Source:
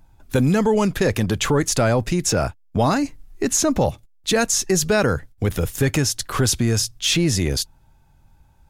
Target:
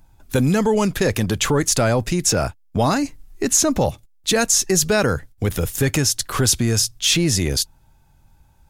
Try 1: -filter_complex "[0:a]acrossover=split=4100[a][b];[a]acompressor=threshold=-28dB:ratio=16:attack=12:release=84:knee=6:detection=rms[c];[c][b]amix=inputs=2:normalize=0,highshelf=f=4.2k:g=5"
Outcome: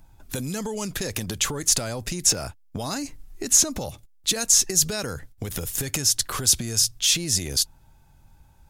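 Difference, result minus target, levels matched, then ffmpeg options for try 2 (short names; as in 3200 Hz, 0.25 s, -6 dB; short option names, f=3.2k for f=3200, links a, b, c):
compressor: peak gain reduction +14.5 dB
-af "highshelf=f=4.2k:g=5"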